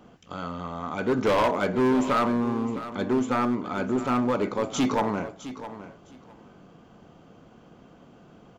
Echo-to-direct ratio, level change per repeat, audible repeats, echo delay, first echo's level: −13.5 dB, −15.0 dB, 2, 659 ms, −13.5 dB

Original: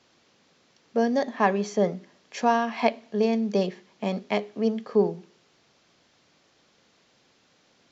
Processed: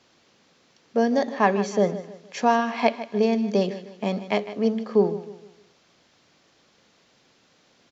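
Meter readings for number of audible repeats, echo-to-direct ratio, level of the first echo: 3, −13.5 dB, −14.0 dB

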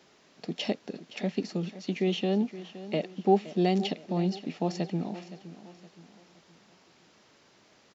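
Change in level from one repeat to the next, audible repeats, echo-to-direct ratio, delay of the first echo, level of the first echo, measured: −7.5 dB, 3, −14.0 dB, 518 ms, −15.0 dB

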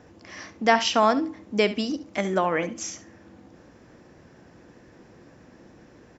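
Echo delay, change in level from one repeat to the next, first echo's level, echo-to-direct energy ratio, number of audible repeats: 69 ms, −16.0 dB, −15.0 dB, −15.0 dB, 2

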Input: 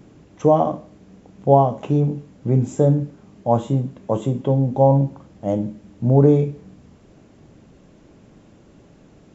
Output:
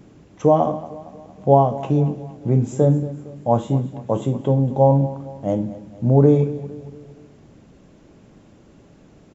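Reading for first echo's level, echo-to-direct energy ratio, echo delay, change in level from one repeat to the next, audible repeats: −16.5 dB, −15.5 dB, 230 ms, −6.0 dB, 3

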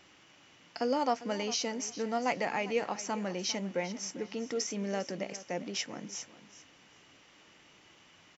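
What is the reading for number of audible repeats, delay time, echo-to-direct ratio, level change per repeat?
2, 400 ms, −15.5 dB, −14.0 dB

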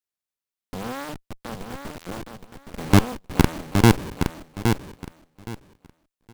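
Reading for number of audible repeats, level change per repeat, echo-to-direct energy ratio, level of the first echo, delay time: 3, −14.0 dB, −6.5 dB, −6.5 dB, 817 ms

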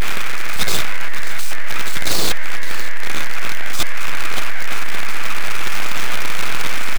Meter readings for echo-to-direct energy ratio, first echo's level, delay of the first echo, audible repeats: −14.5 dB, −14.5 dB, 563 ms, 1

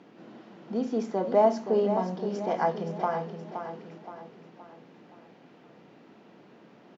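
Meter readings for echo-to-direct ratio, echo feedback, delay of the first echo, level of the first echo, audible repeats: −7.5 dB, 44%, 521 ms, −8.5 dB, 4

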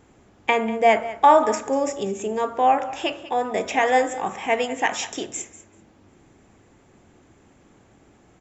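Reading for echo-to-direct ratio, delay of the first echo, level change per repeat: −16.0 dB, 193 ms, −16.0 dB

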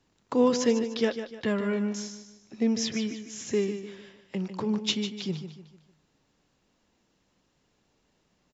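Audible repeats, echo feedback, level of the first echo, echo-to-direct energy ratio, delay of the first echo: 4, 39%, −10.0 dB, −9.5 dB, 150 ms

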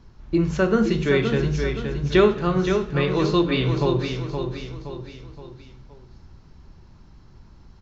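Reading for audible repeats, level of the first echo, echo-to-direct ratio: 4, −6.5 dB, −5.5 dB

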